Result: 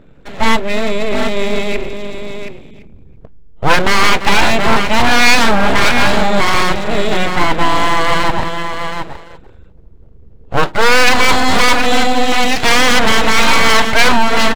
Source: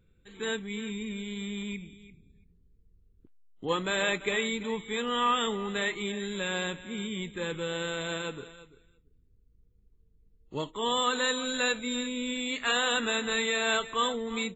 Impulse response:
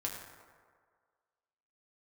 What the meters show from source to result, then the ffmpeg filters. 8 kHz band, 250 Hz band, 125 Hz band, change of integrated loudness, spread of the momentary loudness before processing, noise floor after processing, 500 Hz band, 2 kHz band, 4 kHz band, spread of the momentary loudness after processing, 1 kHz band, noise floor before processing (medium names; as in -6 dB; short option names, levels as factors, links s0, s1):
no reading, +16.0 dB, +19.5 dB, +17.5 dB, 10 LU, -39 dBFS, +16.0 dB, +18.5 dB, +16.0 dB, 12 LU, +20.5 dB, -65 dBFS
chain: -af "lowpass=f=1700:p=1,equalizer=f=740:t=o:w=1.8:g=6.5,aecho=1:1:722:0.355,aeval=exprs='abs(val(0))':c=same,apsyclip=15.8,volume=0.841"